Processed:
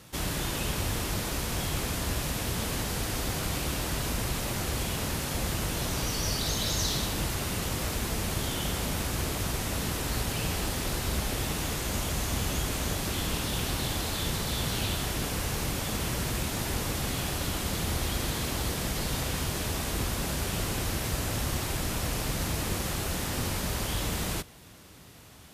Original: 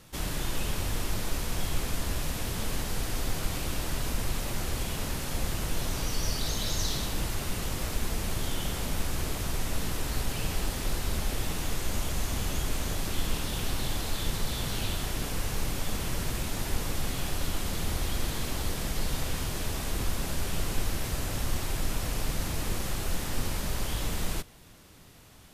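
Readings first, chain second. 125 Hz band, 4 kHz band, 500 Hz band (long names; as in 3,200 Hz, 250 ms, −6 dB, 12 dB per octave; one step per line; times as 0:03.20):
+2.0 dB, +3.0 dB, +3.0 dB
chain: high-pass filter 51 Hz
level +3 dB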